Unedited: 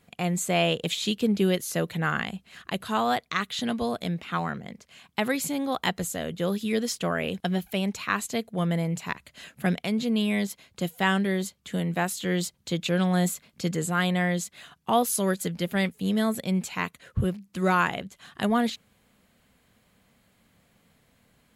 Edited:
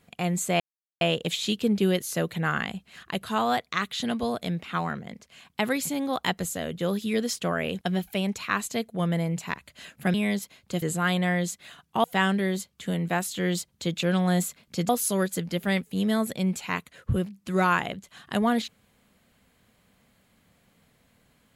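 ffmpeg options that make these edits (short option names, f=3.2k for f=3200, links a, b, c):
-filter_complex "[0:a]asplit=6[a][b][c][d][e][f];[a]atrim=end=0.6,asetpts=PTS-STARTPTS,afade=t=out:st=0.596:d=0.004:c=hsin,apad=pad_dur=0.41[g];[b]atrim=start=0.6:end=9.732,asetpts=PTS-STARTPTS,afade=t=in:d=0.004:c=hsin[h];[c]atrim=start=10.218:end=10.902[i];[d]atrim=start=13.748:end=14.972[j];[e]atrim=start=10.898:end=13.752[k];[f]atrim=start=14.968[l];[g][h]concat=n=2:v=0:a=1[m];[m][i]acrossfade=d=0.004:c1=hsin:c2=hsin[n];[n][j]acrossfade=d=0.004:c1=hsin:c2=hsin[o];[o][k]acrossfade=d=0.004:c1=hsin:c2=hsin[p];[p][l]acrossfade=d=0.004:c1=hsin:c2=hsin"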